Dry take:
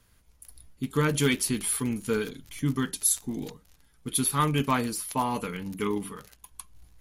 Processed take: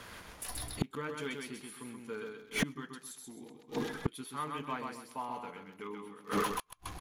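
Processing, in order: spectral noise reduction 7 dB; on a send: feedback echo 0.13 s, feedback 30%, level -4.5 dB; on the sum: flipped gate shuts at -28 dBFS, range -40 dB; overdrive pedal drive 28 dB, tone 1500 Hz, clips at -27 dBFS; gain +10 dB

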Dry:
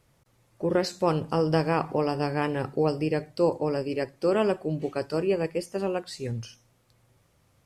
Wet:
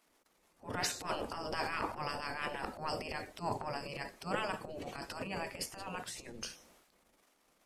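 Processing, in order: transient shaper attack -11 dB, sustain +9 dB; spectral gate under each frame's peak -10 dB weak; gain -2.5 dB

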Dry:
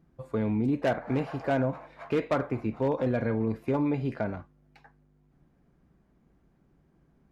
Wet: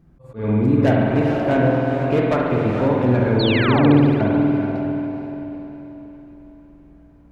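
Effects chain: on a send: diffused feedback echo 0.455 s, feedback 43%, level -5 dB; on the sum: painted sound fall, 3.39–3.99, 260–4600 Hz -31 dBFS; low shelf 120 Hz +9 dB; spring tank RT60 2.1 s, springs 48 ms, chirp 25 ms, DRR -1 dB; auto swell 0.165 s; gain +5 dB

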